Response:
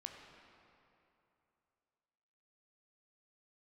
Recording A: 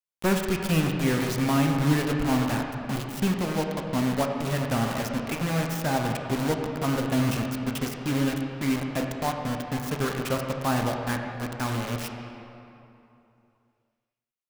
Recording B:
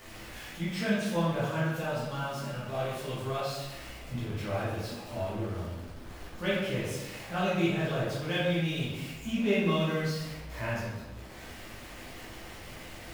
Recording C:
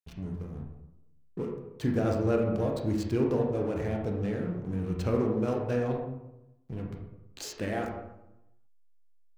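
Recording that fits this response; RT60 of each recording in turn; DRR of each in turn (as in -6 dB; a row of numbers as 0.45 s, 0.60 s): A; 2.9 s, 1.2 s, 0.90 s; 2.0 dB, -10.0 dB, 0.0 dB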